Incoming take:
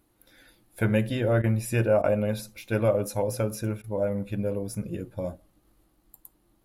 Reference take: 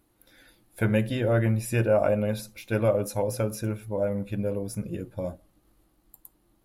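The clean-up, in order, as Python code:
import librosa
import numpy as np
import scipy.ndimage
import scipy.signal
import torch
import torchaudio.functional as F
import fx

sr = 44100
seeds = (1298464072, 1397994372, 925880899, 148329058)

y = fx.fix_interpolate(x, sr, at_s=(1.42, 2.02, 3.82), length_ms=18.0)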